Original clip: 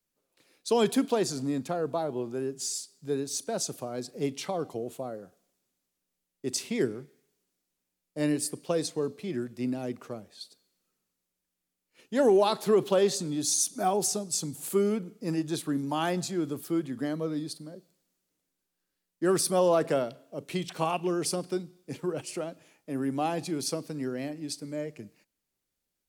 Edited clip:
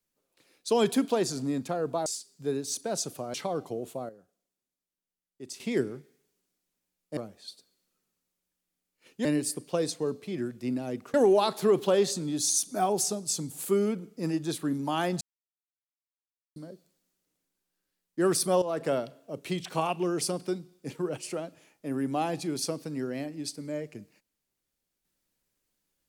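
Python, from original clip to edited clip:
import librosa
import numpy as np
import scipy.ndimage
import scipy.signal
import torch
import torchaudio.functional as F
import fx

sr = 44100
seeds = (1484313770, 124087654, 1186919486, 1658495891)

y = fx.edit(x, sr, fx.cut(start_s=2.06, length_s=0.63),
    fx.cut(start_s=3.97, length_s=0.41),
    fx.clip_gain(start_s=5.13, length_s=1.51, db=-10.5),
    fx.move(start_s=8.21, length_s=1.89, to_s=12.18),
    fx.silence(start_s=16.25, length_s=1.35),
    fx.fade_in_from(start_s=19.66, length_s=0.34, floor_db=-14.0), tone=tone)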